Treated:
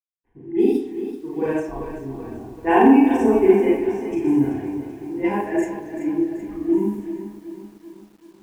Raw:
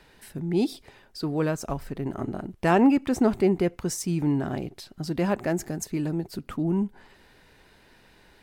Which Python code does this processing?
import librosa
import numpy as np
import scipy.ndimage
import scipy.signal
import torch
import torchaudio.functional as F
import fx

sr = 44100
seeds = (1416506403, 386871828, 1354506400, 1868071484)

p1 = fx.bin_expand(x, sr, power=1.5)
p2 = fx.highpass(p1, sr, hz=230.0, slope=6)
p3 = fx.tilt_eq(p2, sr, slope=-2.5)
p4 = fx.rev_schroeder(p3, sr, rt60_s=0.72, comb_ms=30, drr_db=-8.5)
p5 = fx.level_steps(p4, sr, step_db=20)
p6 = p4 + (p5 * 10.0 ** (-1.5 / 20.0))
p7 = fx.hum_notches(p6, sr, base_hz=60, count=8)
p8 = fx.quant_dither(p7, sr, seeds[0], bits=8, dither='none')
p9 = fx.env_lowpass(p8, sr, base_hz=680.0, full_db=-10.0)
p10 = fx.fixed_phaser(p9, sr, hz=870.0, stages=8)
p11 = p10 + fx.echo_banded(p10, sr, ms=129, feedback_pct=64, hz=720.0, wet_db=-18, dry=0)
p12 = fx.echo_crushed(p11, sr, ms=384, feedback_pct=55, bits=8, wet_db=-11.0)
y = p12 * 10.0 ** (-1.0 / 20.0)